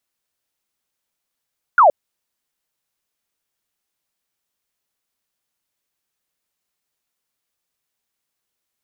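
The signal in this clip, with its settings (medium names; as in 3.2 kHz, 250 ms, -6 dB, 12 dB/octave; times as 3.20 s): laser zap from 1.5 kHz, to 540 Hz, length 0.12 s sine, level -7 dB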